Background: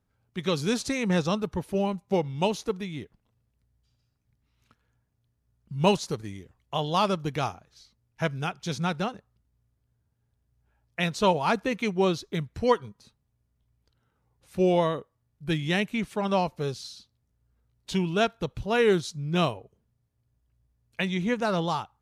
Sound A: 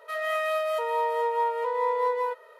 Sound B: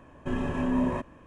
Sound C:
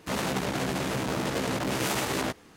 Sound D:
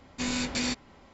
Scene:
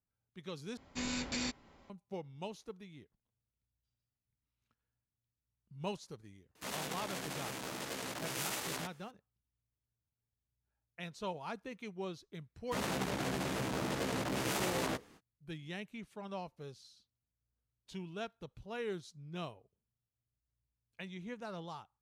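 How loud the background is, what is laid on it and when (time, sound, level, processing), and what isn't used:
background -18 dB
0.77 s: replace with D -7.5 dB
6.55 s: add C -12 dB + tilt EQ +2 dB/octave
12.65 s: add C -7 dB, fades 0.05 s
not used: A, B

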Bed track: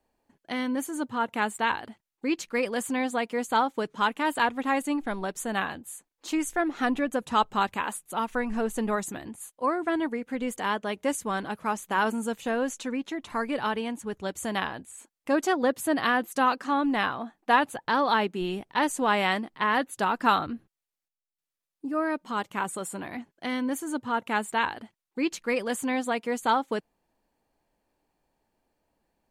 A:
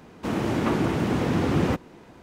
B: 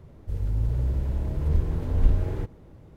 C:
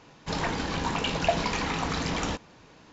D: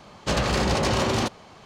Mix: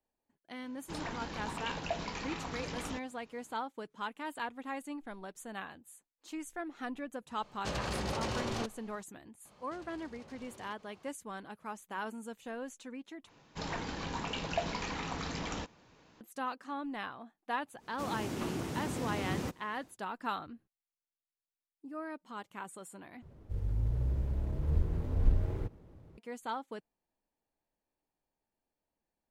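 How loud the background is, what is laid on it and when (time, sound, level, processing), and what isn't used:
bed track -14 dB
0.62 s: add C -11.5 dB
7.38 s: add D -13 dB
9.45 s: add D -15.5 dB + compression 8:1, threshold -37 dBFS
13.29 s: replace with C -9 dB
17.75 s: add A -14 dB, fades 0.10 s + tone controls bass +1 dB, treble +12 dB
23.22 s: replace with B -6.5 dB + sliding maximum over 9 samples

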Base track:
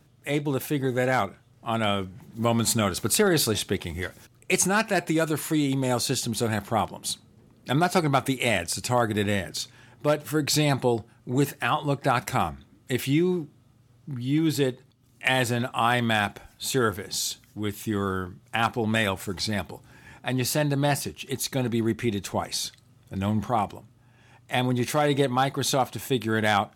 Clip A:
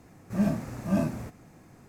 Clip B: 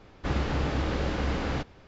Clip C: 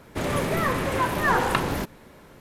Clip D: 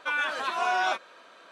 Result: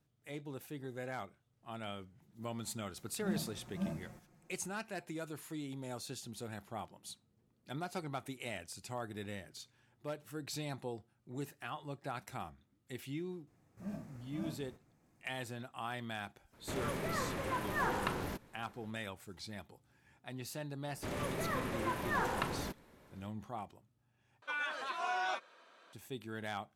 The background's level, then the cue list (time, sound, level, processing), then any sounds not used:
base track -19 dB
2.89 s: add A -17 dB + comb 5.6 ms, depth 97%
13.47 s: add A -18 dB
16.52 s: add C -13 dB, fades 0.02 s
20.87 s: add C -13 dB
24.42 s: replace with D -10 dB
not used: B

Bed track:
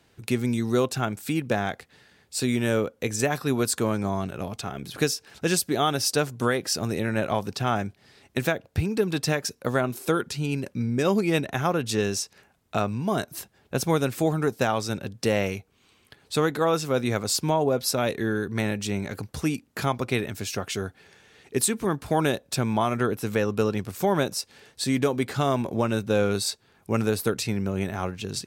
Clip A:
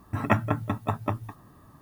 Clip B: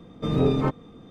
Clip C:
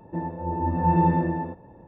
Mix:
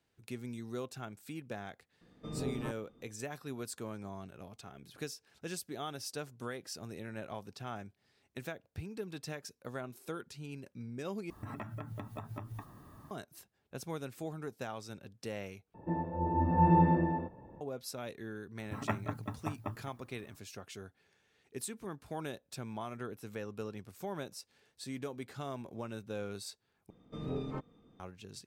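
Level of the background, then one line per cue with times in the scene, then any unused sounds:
bed track -17.5 dB
2.01 s: add B -16.5 dB
11.30 s: replace with A -1.5 dB + compression 10:1, threshold -37 dBFS
15.74 s: replace with C -4.5 dB
18.58 s: add A -11.5 dB
26.90 s: replace with B -16.5 dB

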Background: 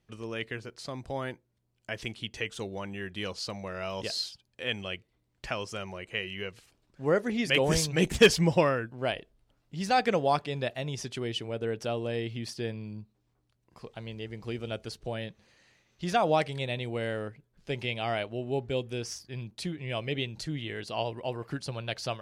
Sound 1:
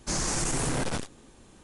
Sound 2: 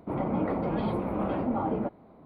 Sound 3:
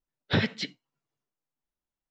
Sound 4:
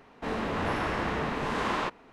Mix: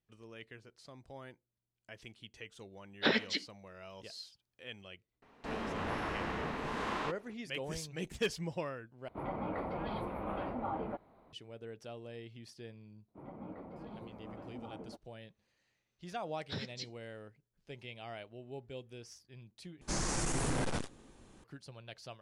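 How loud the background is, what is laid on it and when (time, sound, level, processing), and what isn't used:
background -15 dB
2.72 s: add 3 -1.5 dB + high-pass 240 Hz 24 dB/octave
5.22 s: add 4 -7.5 dB
9.08 s: replace with 2 -3 dB + peaking EQ 220 Hz -10 dB 2.8 oct
13.08 s: add 2 -17.5 dB + upward expansion, over -49 dBFS
16.19 s: add 3 -17 dB + resonant high shelf 3.7 kHz +9.5 dB, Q 1.5
19.81 s: replace with 1 -4.5 dB + treble shelf 4.4 kHz -5 dB

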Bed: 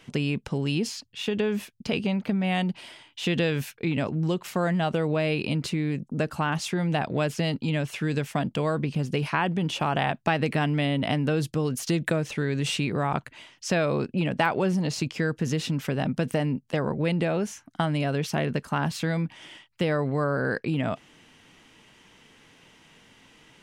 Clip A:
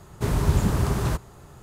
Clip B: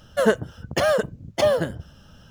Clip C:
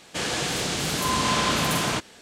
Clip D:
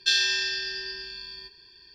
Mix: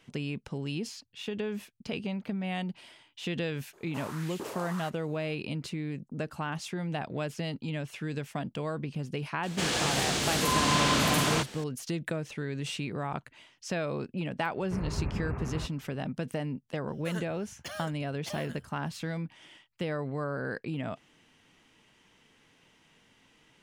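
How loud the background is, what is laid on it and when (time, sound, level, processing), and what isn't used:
bed -8 dB
3.73 s: add A -12 dB + LFO high-pass saw up 1.5 Hz 340–3100 Hz
9.43 s: add C -3 dB + companding laws mixed up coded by mu
14.50 s: add A -12 dB + brick-wall FIR low-pass 2.8 kHz
16.88 s: add B -6 dB + amplifier tone stack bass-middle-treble 5-5-5
not used: D

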